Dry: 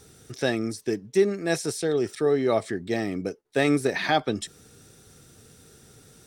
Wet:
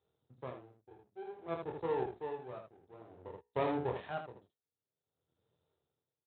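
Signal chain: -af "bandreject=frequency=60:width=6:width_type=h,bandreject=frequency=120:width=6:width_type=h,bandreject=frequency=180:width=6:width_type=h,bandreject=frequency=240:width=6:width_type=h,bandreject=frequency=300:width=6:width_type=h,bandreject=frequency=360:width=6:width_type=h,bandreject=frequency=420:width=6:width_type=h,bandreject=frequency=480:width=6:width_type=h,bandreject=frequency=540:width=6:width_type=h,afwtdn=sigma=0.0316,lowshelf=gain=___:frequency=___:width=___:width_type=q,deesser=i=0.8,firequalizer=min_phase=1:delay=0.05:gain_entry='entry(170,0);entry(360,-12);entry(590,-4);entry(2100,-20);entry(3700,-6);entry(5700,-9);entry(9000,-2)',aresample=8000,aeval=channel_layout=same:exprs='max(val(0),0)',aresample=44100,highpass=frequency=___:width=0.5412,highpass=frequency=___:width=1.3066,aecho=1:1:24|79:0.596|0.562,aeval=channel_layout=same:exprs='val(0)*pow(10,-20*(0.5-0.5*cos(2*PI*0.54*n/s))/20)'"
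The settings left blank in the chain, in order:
-7, 310, 3, 73, 73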